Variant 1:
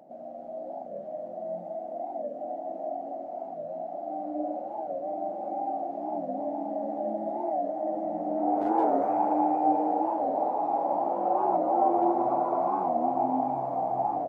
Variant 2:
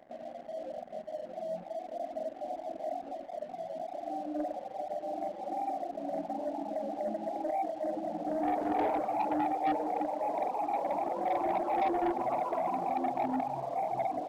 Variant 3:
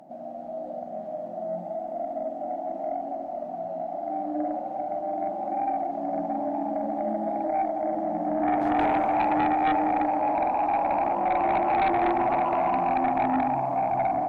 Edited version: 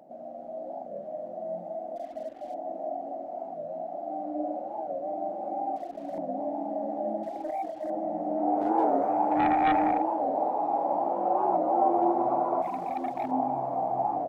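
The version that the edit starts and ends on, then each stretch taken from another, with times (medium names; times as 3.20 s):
1
1.96–2.54 s: from 2
5.76–6.18 s: from 2
7.23–7.90 s: from 2
9.37–9.96 s: from 3, crossfade 0.16 s
12.62–13.31 s: from 2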